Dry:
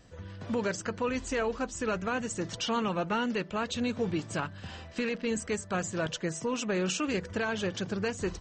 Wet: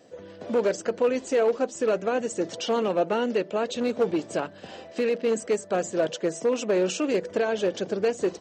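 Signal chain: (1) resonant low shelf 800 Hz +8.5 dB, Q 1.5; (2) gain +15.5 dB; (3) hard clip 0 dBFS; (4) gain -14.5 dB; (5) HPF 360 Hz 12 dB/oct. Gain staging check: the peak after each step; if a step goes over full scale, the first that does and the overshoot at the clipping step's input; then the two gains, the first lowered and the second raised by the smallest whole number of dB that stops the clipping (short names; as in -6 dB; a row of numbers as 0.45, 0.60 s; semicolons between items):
-10.0, +5.5, 0.0, -14.5, -13.0 dBFS; step 2, 5.5 dB; step 2 +9.5 dB, step 4 -8.5 dB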